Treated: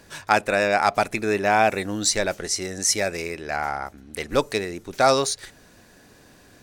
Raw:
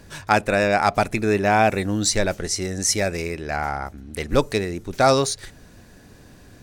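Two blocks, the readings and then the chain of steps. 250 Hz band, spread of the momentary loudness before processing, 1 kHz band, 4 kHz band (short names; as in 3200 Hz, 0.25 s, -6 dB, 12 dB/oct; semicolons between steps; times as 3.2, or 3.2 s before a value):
-4.5 dB, 11 LU, -0.5 dB, 0.0 dB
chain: low shelf 210 Hz -11.5 dB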